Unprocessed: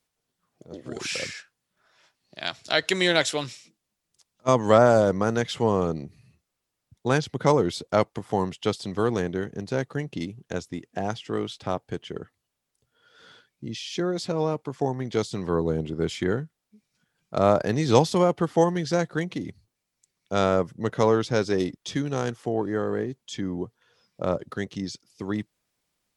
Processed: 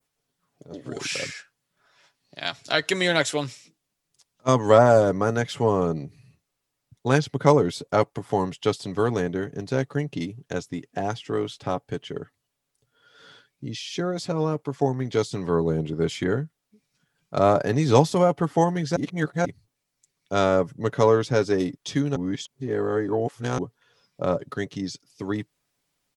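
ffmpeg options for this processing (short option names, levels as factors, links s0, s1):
-filter_complex "[0:a]asplit=5[s0][s1][s2][s3][s4];[s0]atrim=end=18.962[s5];[s1]atrim=start=18.958:end=19.452,asetpts=PTS-STARTPTS,areverse[s6];[s2]atrim=start=19.448:end=22.162[s7];[s3]atrim=start=22.158:end=23.582,asetpts=PTS-STARTPTS,areverse[s8];[s4]atrim=start=23.578[s9];[s5][s6]acrossfade=d=0.004:c1=hsin:c2=hsin[s10];[s10][s7]acrossfade=d=0.004:c1=hsin:c2=hsin[s11];[s11][s8]acrossfade=d=0.004:c1=hsin:c2=hsin[s12];[s12][s9]acrossfade=d=0.004:c1=hsin:c2=hsin,adynamicequalizer=threshold=0.00562:dfrequency=3900:dqfactor=0.89:tfrequency=3900:tqfactor=0.89:attack=5:release=100:ratio=0.375:range=2.5:mode=cutabove:tftype=bell,aecho=1:1:7.1:0.41,volume=1.12"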